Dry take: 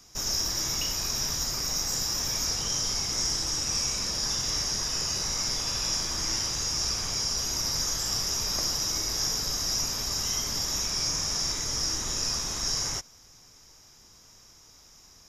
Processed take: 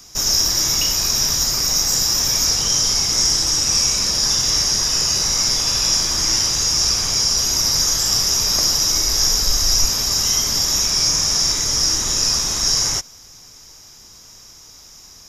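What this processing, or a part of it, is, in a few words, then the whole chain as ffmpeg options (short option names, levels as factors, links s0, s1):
presence and air boost: -filter_complex "[0:a]equalizer=f=4800:t=o:w=1.5:g=2.5,highshelf=f=9300:g=6,asettb=1/sr,asplit=3[s0][s1][s2];[s0]atrim=end=8.654[s3];[s1]atrim=start=8.65:end=9.89,asetpts=PTS-STARTPTS,afade=t=in:d=0.004:c=qsin,afade=t=out:st=1.236:d=0.004:c=qsin,asubboost=boost=12:cutoff=62[s4];[s2]atrim=start=9.886[s5];[s3][s4]acrossfade=d=0.004:c1=hsin:c2=qsin[s6];[s6][s5]acrossfade=d=0.004:c1=qsin:c2=hsin,volume=2.51"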